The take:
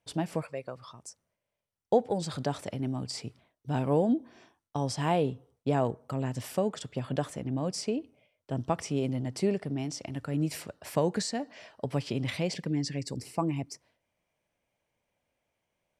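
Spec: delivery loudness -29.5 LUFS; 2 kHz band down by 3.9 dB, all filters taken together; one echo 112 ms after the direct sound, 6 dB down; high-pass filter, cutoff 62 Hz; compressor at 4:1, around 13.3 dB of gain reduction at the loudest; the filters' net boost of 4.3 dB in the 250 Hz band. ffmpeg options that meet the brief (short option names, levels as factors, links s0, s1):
-af "highpass=62,equalizer=f=250:t=o:g=5.5,equalizer=f=2000:t=o:g=-5,acompressor=threshold=0.0224:ratio=4,aecho=1:1:112:0.501,volume=2.51"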